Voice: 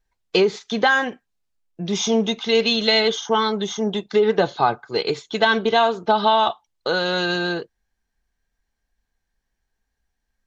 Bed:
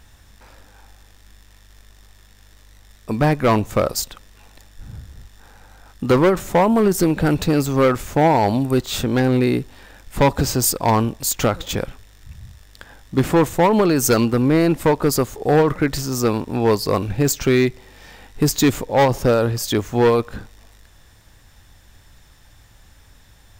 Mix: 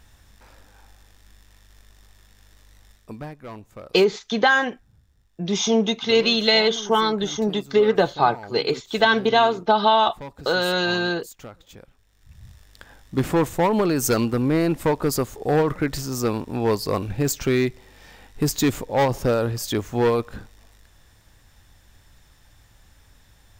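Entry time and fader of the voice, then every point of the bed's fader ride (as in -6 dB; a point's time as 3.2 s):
3.60 s, 0.0 dB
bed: 2.89 s -4 dB
3.33 s -22 dB
11.88 s -22 dB
12.48 s -4.5 dB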